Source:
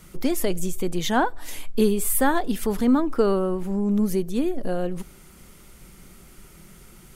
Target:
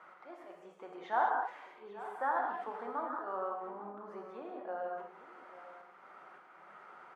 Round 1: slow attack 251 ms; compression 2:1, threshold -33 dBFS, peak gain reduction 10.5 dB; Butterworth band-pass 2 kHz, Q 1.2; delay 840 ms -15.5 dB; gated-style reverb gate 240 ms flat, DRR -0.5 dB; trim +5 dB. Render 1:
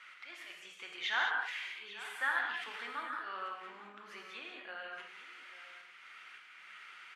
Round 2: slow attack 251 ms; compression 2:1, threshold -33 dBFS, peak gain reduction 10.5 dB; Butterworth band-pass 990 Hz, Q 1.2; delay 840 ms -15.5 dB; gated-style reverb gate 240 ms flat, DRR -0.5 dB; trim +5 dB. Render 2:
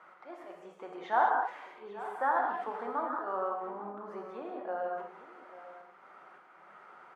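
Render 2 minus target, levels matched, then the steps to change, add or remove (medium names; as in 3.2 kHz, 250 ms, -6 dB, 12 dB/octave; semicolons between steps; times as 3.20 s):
compression: peak gain reduction -4 dB
change: compression 2:1, threshold -41 dBFS, peak gain reduction 14.5 dB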